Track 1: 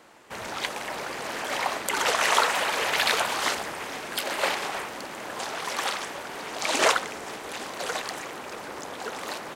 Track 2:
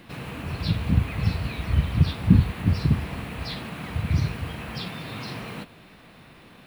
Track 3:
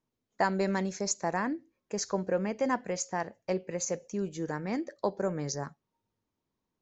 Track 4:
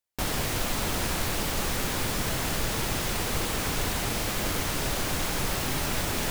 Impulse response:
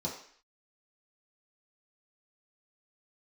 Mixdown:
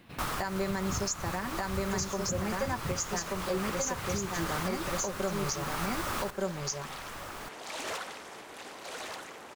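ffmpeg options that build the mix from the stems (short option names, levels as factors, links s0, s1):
-filter_complex "[0:a]asoftclip=type=tanh:threshold=0.0708,adelay=1050,volume=0.316,asplit=2[s0][s1];[s1]volume=0.473[s2];[1:a]volume=0.376[s3];[2:a]highshelf=f=3500:g=11.5,aecho=1:1:5.2:0.78,volume=1.33,asplit=2[s4][s5];[s5]volume=0.668[s6];[3:a]equalizer=f=1200:t=o:w=0.78:g=13,volume=0.531,asplit=2[s7][s8];[s8]volume=0.237[s9];[s2][s6][s9]amix=inputs=3:normalize=0,aecho=0:1:1182:1[s10];[s0][s3][s4][s7][s10]amix=inputs=5:normalize=0,alimiter=limit=0.0841:level=0:latency=1:release=474"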